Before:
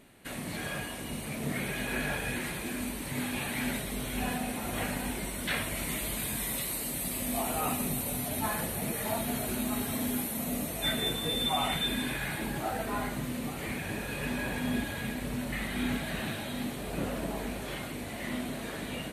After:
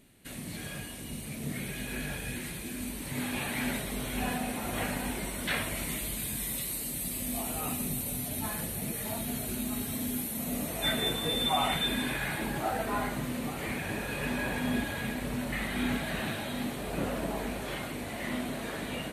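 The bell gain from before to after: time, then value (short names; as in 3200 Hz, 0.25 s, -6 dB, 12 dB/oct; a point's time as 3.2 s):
bell 950 Hz 2.7 oct
2.73 s -9 dB
3.34 s +1 dB
5.67 s +1 dB
6.16 s -7 dB
10.22 s -7 dB
10.76 s +2.5 dB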